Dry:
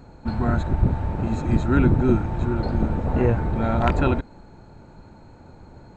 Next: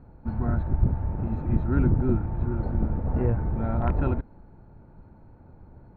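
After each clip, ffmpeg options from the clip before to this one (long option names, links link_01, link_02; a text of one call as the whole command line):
ffmpeg -i in.wav -af "lowpass=1700,lowshelf=frequency=180:gain=7.5,volume=-8.5dB" out.wav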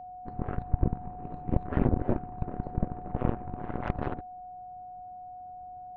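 ffmpeg -i in.wav -af "aeval=exprs='0.398*(cos(1*acos(clip(val(0)/0.398,-1,1)))-cos(1*PI/2))+0.0794*(cos(4*acos(clip(val(0)/0.398,-1,1)))-cos(4*PI/2))+0.0794*(cos(7*acos(clip(val(0)/0.398,-1,1)))-cos(7*PI/2))':channel_layout=same,aeval=exprs='val(0)+0.0158*sin(2*PI*730*n/s)':channel_layout=same,volume=-5dB" out.wav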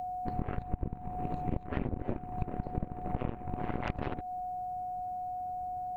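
ffmpeg -i in.wav -af "acompressor=threshold=-35dB:ratio=8,aexciter=amount=2.4:drive=5.9:freq=2100,volume=6.5dB" out.wav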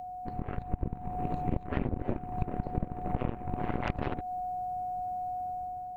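ffmpeg -i in.wav -af "dynaudnorm=framelen=160:gausssize=7:maxgain=6dB,volume=-3.5dB" out.wav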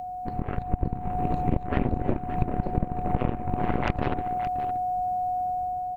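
ffmpeg -i in.wav -af "aecho=1:1:570:0.266,volume=6dB" out.wav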